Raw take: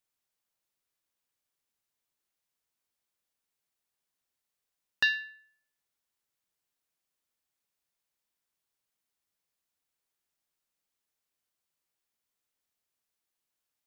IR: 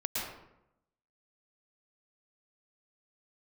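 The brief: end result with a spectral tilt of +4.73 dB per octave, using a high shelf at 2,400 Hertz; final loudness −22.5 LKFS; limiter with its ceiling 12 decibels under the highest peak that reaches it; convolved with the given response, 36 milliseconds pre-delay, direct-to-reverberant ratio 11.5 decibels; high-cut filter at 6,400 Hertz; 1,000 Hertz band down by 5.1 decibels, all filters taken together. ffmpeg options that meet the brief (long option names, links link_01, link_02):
-filter_complex "[0:a]lowpass=6400,equalizer=frequency=1000:width_type=o:gain=-6,highshelf=frequency=2400:gain=-4,alimiter=level_in=4dB:limit=-24dB:level=0:latency=1,volume=-4dB,asplit=2[link_01][link_02];[1:a]atrim=start_sample=2205,adelay=36[link_03];[link_02][link_03]afir=irnorm=-1:irlink=0,volume=-16.5dB[link_04];[link_01][link_04]amix=inputs=2:normalize=0,volume=17dB"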